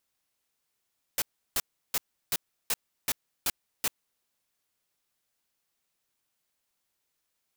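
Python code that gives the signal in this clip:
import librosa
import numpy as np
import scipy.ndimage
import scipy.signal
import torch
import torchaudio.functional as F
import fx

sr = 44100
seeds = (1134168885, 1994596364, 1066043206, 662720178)

y = fx.noise_burst(sr, seeds[0], colour='white', on_s=0.04, off_s=0.34, bursts=8, level_db=-27.0)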